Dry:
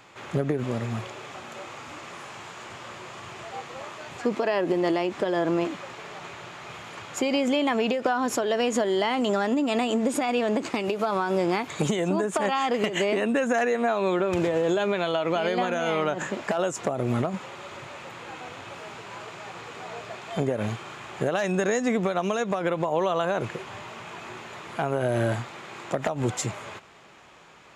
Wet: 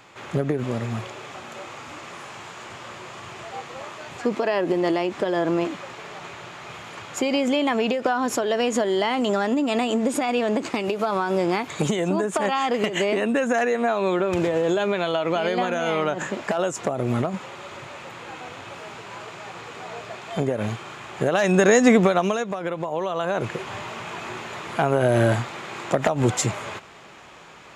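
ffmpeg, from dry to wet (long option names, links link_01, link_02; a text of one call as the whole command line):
ffmpeg -i in.wav -af "volume=18dB,afade=type=in:start_time=21.16:duration=0.71:silence=0.398107,afade=type=out:start_time=21.87:duration=0.61:silence=0.251189,afade=type=in:start_time=23.12:duration=0.6:silence=0.398107" out.wav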